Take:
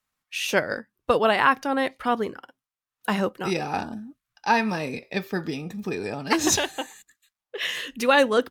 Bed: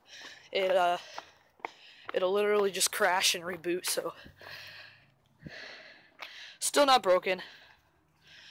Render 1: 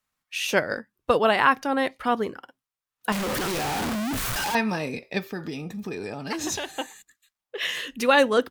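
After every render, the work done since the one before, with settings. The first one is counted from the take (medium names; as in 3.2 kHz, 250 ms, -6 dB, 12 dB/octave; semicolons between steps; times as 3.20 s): 3.12–4.55 s: one-bit comparator; 5.19–6.77 s: compression 2.5:1, threshold -29 dBFS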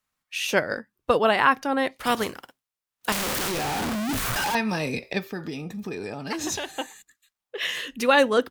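1.96–3.48 s: spectral contrast reduction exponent 0.59; 4.09–5.13 s: three bands compressed up and down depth 70%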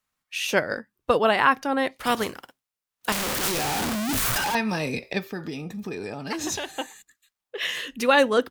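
3.43–4.38 s: treble shelf 3.8 kHz +6 dB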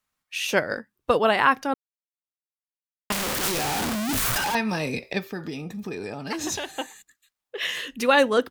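1.74–3.10 s: mute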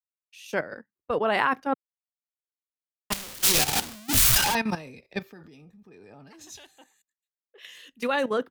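level held to a coarse grid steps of 13 dB; three bands expanded up and down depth 100%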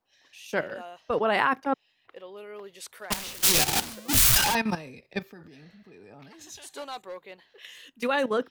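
add bed -15 dB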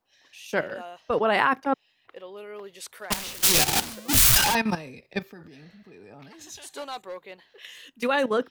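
trim +2 dB; peak limiter -3 dBFS, peak gain reduction 2 dB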